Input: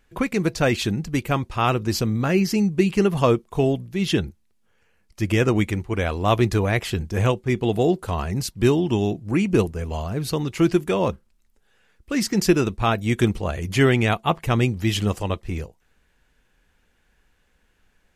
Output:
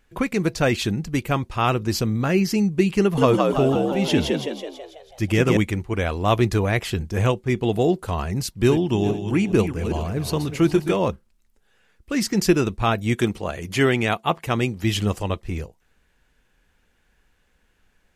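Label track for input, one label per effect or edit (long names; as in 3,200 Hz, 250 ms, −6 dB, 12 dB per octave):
3.010000	5.570000	echo with shifted repeats 164 ms, feedback 54%, per repeat +63 Hz, level −3 dB
8.490000	10.960000	feedback delay that plays each chunk backwards 207 ms, feedback 47%, level −9.5 dB
13.150000	14.840000	high-pass filter 180 Hz 6 dB per octave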